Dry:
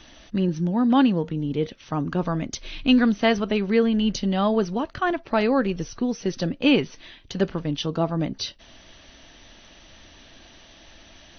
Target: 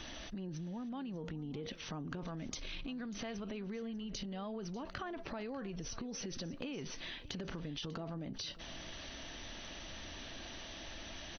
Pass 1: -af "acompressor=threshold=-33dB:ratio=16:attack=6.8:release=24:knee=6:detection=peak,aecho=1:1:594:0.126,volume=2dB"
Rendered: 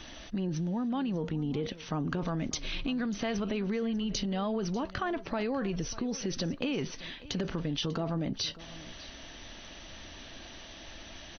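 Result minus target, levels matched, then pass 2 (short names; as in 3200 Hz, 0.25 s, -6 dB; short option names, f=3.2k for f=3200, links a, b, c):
compressor: peak gain reduction -11 dB
-af "acompressor=threshold=-44.5dB:ratio=16:attack=6.8:release=24:knee=6:detection=peak,aecho=1:1:594:0.126,volume=2dB"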